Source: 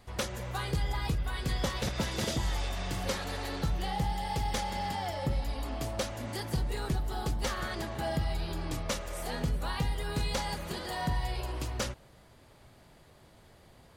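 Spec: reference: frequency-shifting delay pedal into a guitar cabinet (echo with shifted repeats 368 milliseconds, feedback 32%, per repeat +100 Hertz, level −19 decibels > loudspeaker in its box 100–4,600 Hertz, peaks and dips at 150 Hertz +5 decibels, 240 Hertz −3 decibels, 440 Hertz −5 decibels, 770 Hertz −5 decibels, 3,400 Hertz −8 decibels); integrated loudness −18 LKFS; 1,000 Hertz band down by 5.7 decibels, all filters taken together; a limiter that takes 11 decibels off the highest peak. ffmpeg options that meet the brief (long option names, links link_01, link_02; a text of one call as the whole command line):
ffmpeg -i in.wav -filter_complex "[0:a]equalizer=frequency=1000:width_type=o:gain=-3.5,alimiter=level_in=8.5dB:limit=-24dB:level=0:latency=1,volume=-8.5dB,asplit=4[link_01][link_02][link_03][link_04];[link_02]adelay=368,afreqshift=100,volume=-19dB[link_05];[link_03]adelay=736,afreqshift=200,volume=-28.9dB[link_06];[link_04]adelay=1104,afreqshift=300,volume=-38.8dB[link_07];[link_01][link_05][link_06][link_07]amix=inputs=4:normalize=0,highpass=100,equalizer=frequency=150:width_type=q:width=4:gain=5,equalizer=frequency=240:width_type=q:width=4:gain=-3,equalizer=frequency=440:width_type=q:width=4:gain=-5,equalizer=frequency=770:width_type=q:width=4:gain=-5,equalizer=frequency=3400:width_type=q:width=4:gain=-8,lowpass=frequency=4600:width=0.5412,lowpass=frequency=4600:width=1.3066,volume=26dB" out.wav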